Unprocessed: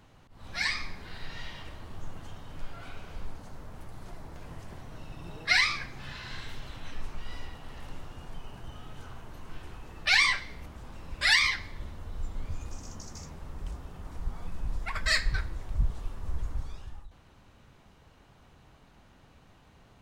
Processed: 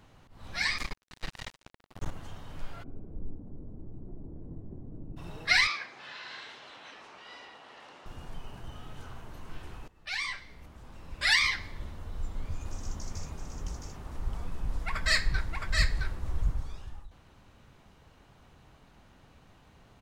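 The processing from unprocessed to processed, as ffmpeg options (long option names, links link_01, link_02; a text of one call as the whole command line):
ffmpeg -i in.wav -filter_complex "[0:a]asettb=1/sr,asplit=3[link_01][link_02][link_03];[link_01]atrim=end=0.784[link_04];[link_02]atrim=start=0.78:end=2.11,asetpts=PTS-STARTPTS,afade=type=in:duration=0.004:curve=qsin,afade=type=out:start_time=1.326:duration=0.004:curve=qsin,acrusher=bits=4:mix=0:aa=0.5[link_05];[link_03]atrim=start=2.106[link_06];[link_04][link_05]acrossfade=duration=0.004:curve1=hsin:curve2=qsin[link_07];[link_07][link_06]acrossfade=duration=0.004:curve1=qsin:curve2=hsin,asplit=3[link_08][link_09][link_10];[link_08]afade=type=out:start_time=2.82:duration=0.02[link_11];[link_09]lowpass=frequency=320:width_type=q:width=1.9,afade=type=in:start_time=2.82:duration=0.02,afade=type=out:start_time=5.16:duration=0.02[link_12];[link_10]afade=type=in:start_time=5.16:duration=0.02[link_13];[link_11][link_12][link_13]amix=inputs=3:normalize=0,asettb=1/sr,asplit=3[link_14][link_15][link_16];[link_14]atrim=end=5.674[link_17];[link_15]atrim=start=5.67:end=8.06,asetpts=PTS-STARTPTS,afade=type=in:duration=0.004:curve=qsin,afade=type=out:start_time=2.386:duration=0.004:curve=qsin,highpass=450,lowpass=5600[link_18];[link_16]atrim=start=8.056[link_19];[link_17][link_18]acrossfade=duration=0.004:curve1=hsin:curve2=qsin[link_20];[link_20][link_19]acrossfade=duration=0.004:curve1=qsin:curve2=hsin,asplit=3[link_21][link_22][link_23];[link_21]afade=type=out:start_time=12.64:duration=0.02[link_24];[link_22]aecho=1:1:666:0.668,afade=type=in:start_time=12.64:duration=0.02,afade=type=out:start_time=16.5:duration=0.02[link_25];[link_23]afade=type=in:start_time=16.5:duration=0.02[link_26];[link_24][link_25][link_26]amix=inputs=3:normalize=0,asplit=2[link_27][link_28];[link_27]atrim=end=9.88,asetpts=PTS-STARTPTS,afade=type=out:start_time=9.876:duration=0.004:curve=hsin:silence=0.112202[link_29];[link_28]atrim=start=9.88,asetpts=PTS-STARTPTS,afade=type=in:duration=1.78:silence=0.112202[link_30];[link_29][link_30]concat=n=2:v=0:a=1" out.wav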